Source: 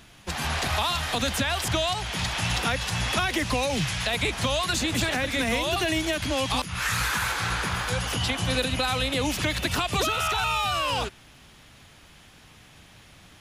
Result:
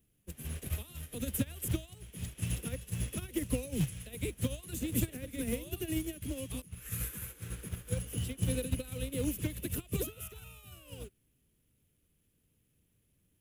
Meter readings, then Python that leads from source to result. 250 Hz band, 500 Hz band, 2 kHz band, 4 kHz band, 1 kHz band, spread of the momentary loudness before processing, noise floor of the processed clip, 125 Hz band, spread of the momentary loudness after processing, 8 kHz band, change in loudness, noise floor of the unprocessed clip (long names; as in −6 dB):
−6.5 dB, −12.0 dB, −22.5 dB, −22.0 dB, −30.0 dB, 3 LU, −75 dBFS, −6.0 dB, 11 LU, −9.5 dB, −11.5 dB, −52 dBFS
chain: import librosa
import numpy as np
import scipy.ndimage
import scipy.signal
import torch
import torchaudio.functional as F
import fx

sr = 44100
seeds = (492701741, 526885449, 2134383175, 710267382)

p1 = fx.curve_eq(x, sr, hz=(130.0, 490.0, 800.0, 2900.0, 4500.0, 12000.0), db=(0, -2, -25, -11, -20, 8))
p2 = fx.quant_companded(p1, sr, bits=4)
p3 = p1 + (p2 * librosa.db_to_amplitude(-5.0))
p4 = fx.upward_expand(p3, sr, threshold_db=-34.0, expansion=2.5)
y = p4 * librosa.db_to_amplitude(-4.5)